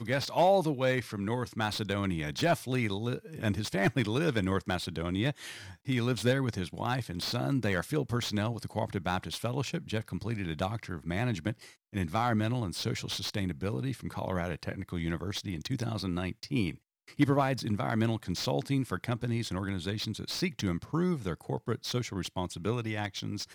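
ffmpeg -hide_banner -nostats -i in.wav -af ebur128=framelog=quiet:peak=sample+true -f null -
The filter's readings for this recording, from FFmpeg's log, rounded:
Integrated loudness:
  I:         -32.1 LUFS
  Threshold: -42.2 LUFS
Loudness range:
  LRA:         3.7 LU
  Threshold: -52.4 LUFS
  LRA low:   -34.5 LUFS
  LRA high:  -30.8 LUFS
Sample peak:
  Peak:      -11.4 dBFS
True peak:
  Peak:      -11.4 dBFS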